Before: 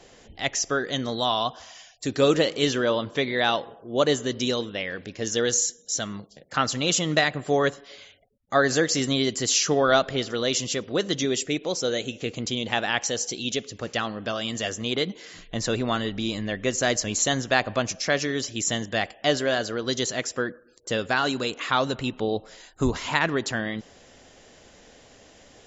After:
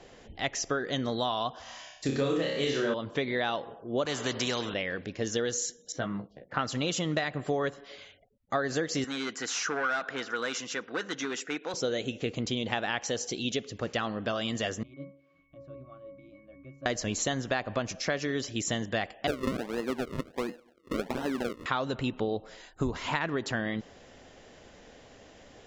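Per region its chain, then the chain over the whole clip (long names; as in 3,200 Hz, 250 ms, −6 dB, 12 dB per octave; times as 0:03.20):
0:01.62–0:02.94: double-tracking delay 43 ms −7 dB + flutter between parallel walls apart 5.1 metres, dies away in 0.57 s
0:04.05–0:04.74: high-pass filter 110 Hz + every bin compressed towards the loudest bin 2 to 1
0:05.92–0:06.59: low-pass filter 2,100 Hz + double-tracking delay 16 ms −5.5 dB
0:09.04–0:11.74: hard clipping −20.5 dBFS + loudspeaker in its box 370–7,000 Hz, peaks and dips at 380 Hz −8 dB, 590 Hz −10 dB, 1,500 Hz +10 dB, 3,200 Hz −6 dB, 4,500 Hz −6 dB
0:14.83–0:16.86: resonances in every octave C#, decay 0.48 s + one half of a high-frequency compander encoder only
0:19.27–0:21.66: running median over 41 samples + high-pass filter 180 Hz 24 dB per octave + sample-and-hold swept by an LFO 38× 1.4 Hz
whole clip: low-pass filter 3,100 Hz 6 dB per octave; downward compressor 6 to 1, threshold −26 dBFS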